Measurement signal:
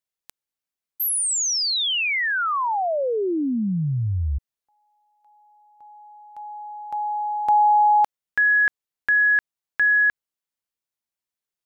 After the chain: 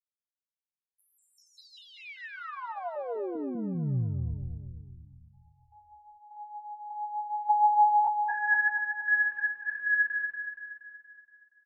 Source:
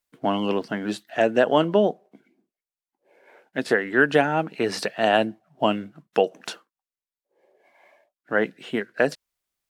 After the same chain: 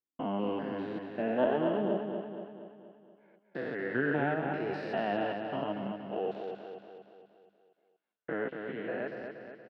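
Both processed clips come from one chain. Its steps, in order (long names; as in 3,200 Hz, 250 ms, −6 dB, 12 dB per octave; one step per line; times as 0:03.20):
spectrum averaged block by block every 200 ms
noise gate −55 dBFS, range −36 dB
in parallel at −1.5 dB: output level in coarse steps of 21 dB
on the sum: flanger 0.64 Hz, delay 2.3 ms, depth 6 ms, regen +36%
floating-point word with a short mantissa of 8 bits
high-frequency loss of the air 360 metres
on a send: repeating echo 236 ms, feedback 53%, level −6 dB
on the sum: level −4 dB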